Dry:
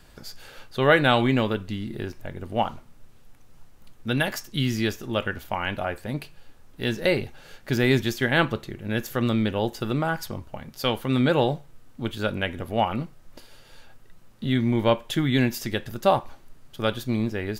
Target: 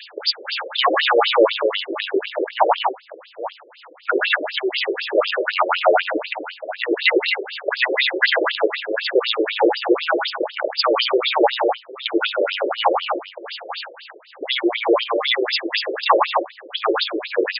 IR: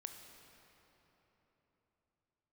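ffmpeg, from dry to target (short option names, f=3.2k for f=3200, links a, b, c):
-filter_complex "[0:a]afftfilt=real='re*lt(hypot(re,im),0.562)':imag='im*lt(hypot(re,im),0.562)':win_size=1024:overlap=0.75,bandreject=f=60:t=h:w=6,bandreject=f=120:t=h:w=6,bandreject=f=180:t=h:w=6,bandreject=f=240:t=h:w=6,bandreject=f=300:t=h:w=6,bandreject=f=360:t=h:w=6,aeval=exprs='val(0)+0.002*sin(2*PI*5400*n/s)':c=same,aresample=16000,asoftclip=type=tanh:threshold=-25dB,aresample=44100,tremolo=f=3.4:d=0.72,asplit=2[a][b];[b]aecho=0:1:56|104|205|231|842:0.106|0.473|0.224|0.224|0.106[c];[a][c]amix=inputs=2:normalize=0,alimiter=level_in=29dB:limit=-1dB:release=50:level=0:latency=1,afftfilt=real='re*between(b*sr/1024,420*pow(3800/420,0.5+0.5*sin(2*PI*4*pts/sr))/1.41,420*pow(3800/420,0.5+0.5*sin(2*PI*4*pts/sr))*1.41)':imag='im*between(b*sr/1024,420*pow(3800/420,0.5+0.5*sin(2*PI*4*pts/sr))/1.41,420*pow(3800/420,0.5+0.5*sin(2*PI*4*pts/sr))*1.41)':win_size=1024:overlap=0.75,volume=-1.5dB"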